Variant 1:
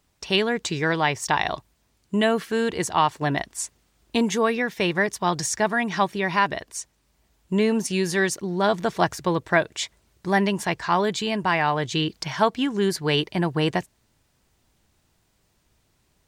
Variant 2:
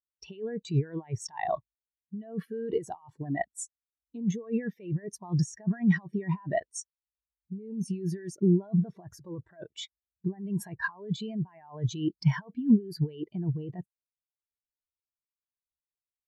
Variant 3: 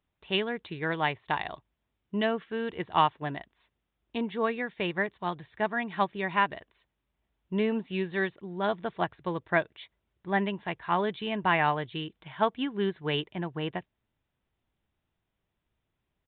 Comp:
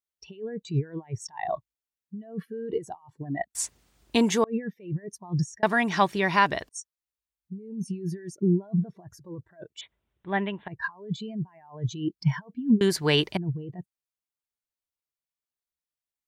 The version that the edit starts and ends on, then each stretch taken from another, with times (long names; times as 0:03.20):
2
0:03.55–0:04.44: punch in from 1
0:05.63–0:06.69: punch in from 1
0:09.81–0:10.68: punch in from 3
0:12.81–0:13.37: punch in from 1